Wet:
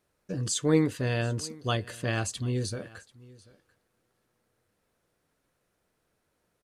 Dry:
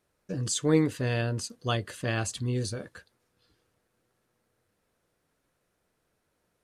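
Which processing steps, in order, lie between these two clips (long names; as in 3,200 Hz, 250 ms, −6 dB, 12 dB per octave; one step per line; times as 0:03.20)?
single-tap delay 739 ms −22.5 dB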